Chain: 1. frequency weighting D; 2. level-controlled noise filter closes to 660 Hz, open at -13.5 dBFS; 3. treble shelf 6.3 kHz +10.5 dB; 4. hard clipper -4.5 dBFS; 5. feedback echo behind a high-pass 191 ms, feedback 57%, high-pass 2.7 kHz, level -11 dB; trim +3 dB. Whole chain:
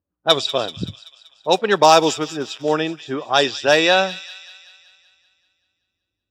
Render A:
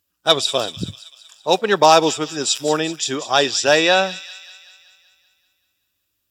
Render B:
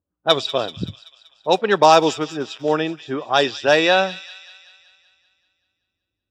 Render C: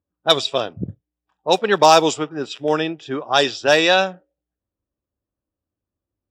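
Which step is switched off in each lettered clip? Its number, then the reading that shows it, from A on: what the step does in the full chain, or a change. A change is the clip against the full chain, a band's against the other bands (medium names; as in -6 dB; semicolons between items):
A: 2, 8 kHz band +6.0 dB; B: 3, 8 kHz band -5.0 dB; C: 5, echo-to-direct -17.0 dB to none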